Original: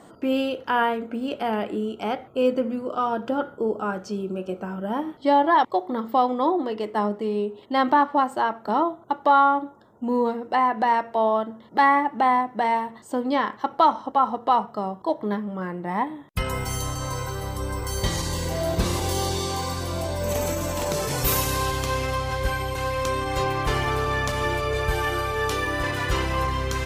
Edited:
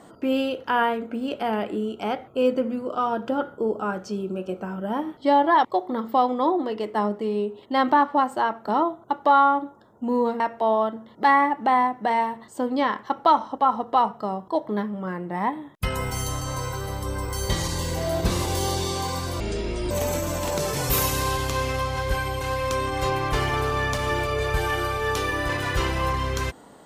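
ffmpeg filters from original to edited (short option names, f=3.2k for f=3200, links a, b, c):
-filter_complex "[0:a]asplit=4[a][b][c][d];[a]atrim=end=10.402[e];[b]atrim=start=10.938:end=19.944[f];[c]atrim=start=19.94:end=20.25,asetpts=PTS-STARTPTS,asetrate=26901,aresample=44100,atrim=end_sample=22411,asetpts=PTS-STARTPTS[g];[d]atrim=start=20.246[h];[e][f]acrossfade=d=0.004:c1=hsin:c2=hsin[i];[i][g]acrossfade=d=0.004:c1=hsin:c2=hsin[j];[j][h]acrossfade=d=0.004:c1=hsin:c2=hsin"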